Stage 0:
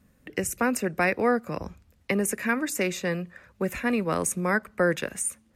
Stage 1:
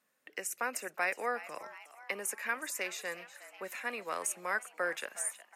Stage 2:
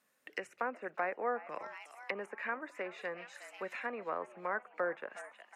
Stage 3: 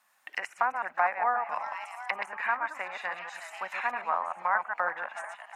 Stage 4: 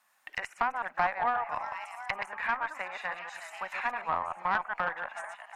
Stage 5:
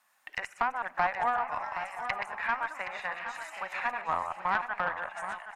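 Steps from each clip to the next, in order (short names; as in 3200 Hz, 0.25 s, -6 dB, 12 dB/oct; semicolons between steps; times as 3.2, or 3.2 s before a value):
HPF 680 Hz 12 dB/oct; frequency-shifting echo 0.365 s, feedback 57%, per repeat +130 Hz, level -15.5 dB; gain -6.5 dB
dynamic EQ 5800 Hz, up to -7 dB, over -53 dBFS, Q 1; treble ducked by the level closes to 1200 Hz, closed at -34.5 dBFS; gain +1.5 dB
reverse delay 0.103 s, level -5 dB; resonant low shelf 600 Hz -11 dB, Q 3; gain +6 dB
tube stage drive 16 dB, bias 0.35
echo 0.771 s -10 dB; on a send at -23 dB: reverb RT60 1.4 s, pre-delay 28 ms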